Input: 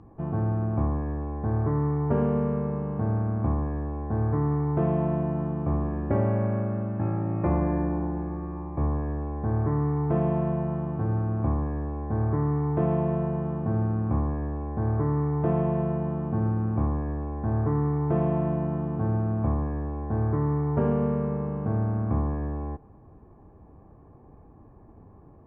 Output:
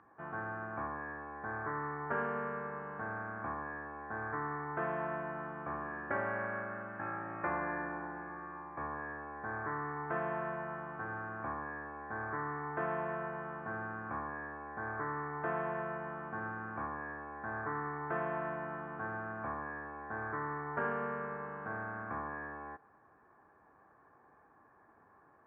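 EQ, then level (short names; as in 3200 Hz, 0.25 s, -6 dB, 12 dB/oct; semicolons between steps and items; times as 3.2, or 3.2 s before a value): band-pass 1600 Hz, Q 4.1; +10.5 dB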